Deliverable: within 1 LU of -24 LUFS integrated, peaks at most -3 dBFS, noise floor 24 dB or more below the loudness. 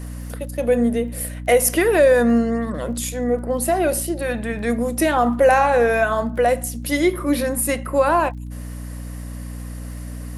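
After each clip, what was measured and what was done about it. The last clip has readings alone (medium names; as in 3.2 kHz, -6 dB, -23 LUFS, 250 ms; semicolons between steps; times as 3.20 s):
tick rate 25 per s; hum 60 Hz; highest harmonic 300 Hz; hum level -29 dBFS; loudness -19.0 LUFS; peak level -5.5 dBFS; loudness target -24.0 LUFS
-> de-click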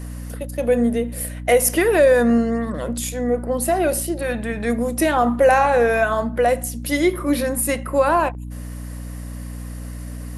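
tick rate 0 per s; hum 60 Hz; highest harmonic 300 Hz; hum level -29 dBFS
-> de-hum 60 Hz, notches 5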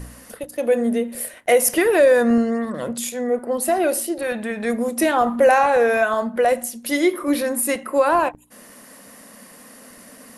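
hum not found; loudness -19.5 LUFS; peak level -5.0 dBFS; loudness target -24.0 LUFS
-> trim -4.5 dB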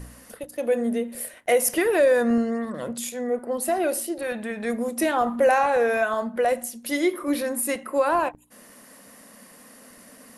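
loudness -24.0 LUFS; peak level -9.5 dBFS; noise floor -50 dBFS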